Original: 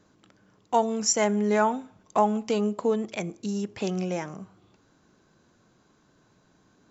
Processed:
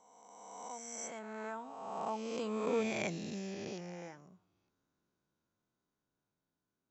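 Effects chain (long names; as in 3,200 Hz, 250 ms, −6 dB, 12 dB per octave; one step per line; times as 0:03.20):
peak hold with a rise ahead of every peak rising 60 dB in 2.27 s
source passing by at 0:02.96, 15 m/s, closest 4.3 metres
level −8.5 dB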